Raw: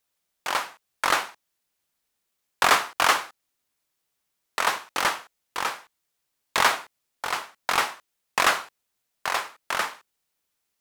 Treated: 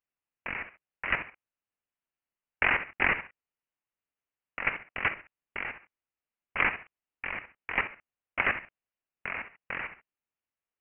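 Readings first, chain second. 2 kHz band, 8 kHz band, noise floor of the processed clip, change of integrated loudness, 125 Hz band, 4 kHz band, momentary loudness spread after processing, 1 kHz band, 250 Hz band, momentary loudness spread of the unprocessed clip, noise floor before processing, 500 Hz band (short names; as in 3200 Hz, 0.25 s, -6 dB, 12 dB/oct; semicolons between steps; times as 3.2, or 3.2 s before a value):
-2.5 dB, under -40 dB, under -85 dBFS, -6.0 dB, +2.0 dB, -17.0 dB, 16 LU, -12.5 dB, -3.0 dB, 15 LU, -79 dBFS, -9.0 dB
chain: HPF 190 Hz 6 dB/oct; level quantiser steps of 11 dB; inverted band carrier 3200 Hz; gain -2 dB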